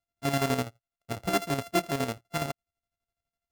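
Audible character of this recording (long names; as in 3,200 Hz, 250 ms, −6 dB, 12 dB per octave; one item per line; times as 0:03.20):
a buzz of ramps at a fixed pitch in blocks of 64 samples
chopped level 12 Hz, depth 60%, duty 50%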